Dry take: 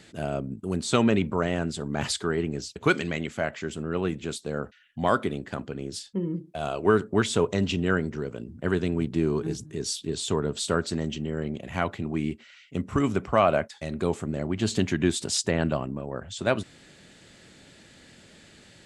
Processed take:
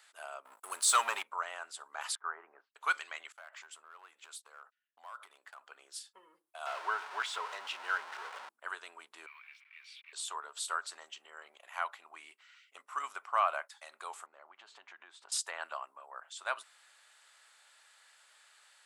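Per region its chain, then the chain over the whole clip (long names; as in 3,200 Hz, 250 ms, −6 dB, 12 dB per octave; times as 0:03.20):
0:00.45–0:01.23: high-shelf EQ 6,700 Hz +11 dB + leveller curve on the samples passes 2
0:02.15–0:02.75: downward expander −36 dBFS + low-pass filter 1,600 Hz 24 dB per octave + dynamic equaliser 940 Hz, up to +3 dB, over −40 dBFS, Q 1.2
0:03.32–0:05.66: noise gate −46 dBFS, range −21 dB + downward compressor 8 to 1, threshold −33 dBFS + hard clipping −30 dBFS
0:06.66–0:08.49: converter with a step at zero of −24.5 dBFS + high-frequency loss of the air 130 metres + notch filter 1,200 Hz, Q 11
0:09.26–0:10.13: hold until the input has moved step −46 dBFS + high-pass with resonance 2,300 Hz, resonance Q 16 + high-frequency loss of the air 380 metres
0:14.26–0:15.32: downward compressor 3 to 1, threshold −29 dBFS + head-to-tape spacing loss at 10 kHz 27 dB
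whole clip: high-pass filter 1,000 Hz 24 dB per octave; flat-topped bell 3,500 Hz −8.5 dB 2.4 octaves; level −1 dB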